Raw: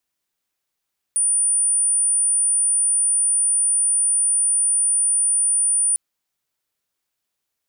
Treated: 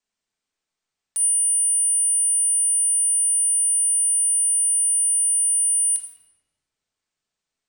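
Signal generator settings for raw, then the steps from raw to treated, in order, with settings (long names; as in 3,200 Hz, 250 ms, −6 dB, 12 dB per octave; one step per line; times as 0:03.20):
tone sine 9,400 Hz −15.5 dBFS 4.80 s
Butterworth low-pass 8,900 Hz 96 dB per octave
leveller curve on the samples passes 2
rectangular room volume 920 cubic metres, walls mixed, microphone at 1.5 metres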